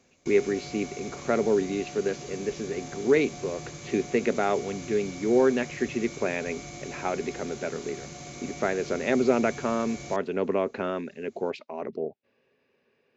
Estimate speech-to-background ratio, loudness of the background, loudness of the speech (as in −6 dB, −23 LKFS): 12.0 dB, −40.5 LKFS, −28.5 LKFS